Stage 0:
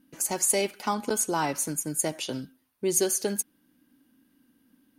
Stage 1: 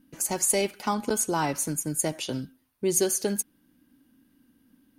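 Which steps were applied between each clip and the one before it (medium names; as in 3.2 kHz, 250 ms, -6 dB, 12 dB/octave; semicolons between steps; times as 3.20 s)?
bass shelf 130 Hz +9.5 dB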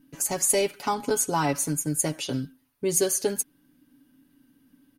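comb 7.1 ms, depth 59%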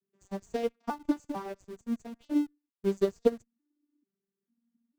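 vocoder on a broken chord minor triad, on G3, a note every 447 ms; in parallel at -8 dB: Schmitt trigger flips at -34.5 dBFS; on the sum: upward expansion 2.5:1, over -34 dBFS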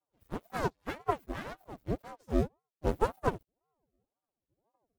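frequency axis rescaled in octaves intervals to 127%; half-wave rectifier; ring modulator with a swept carrier 410 Hz, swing 90%, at 1.9 Hz; trim +6 dB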